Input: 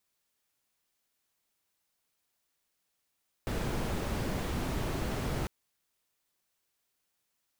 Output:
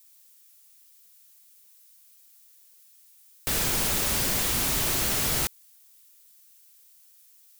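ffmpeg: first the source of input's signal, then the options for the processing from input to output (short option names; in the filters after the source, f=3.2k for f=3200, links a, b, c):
-f lavfi -i "anoisesrc=c=brown:a=0.111:d=2:r=44100:seed=1"
-af "crystalizer=i=10:c=0"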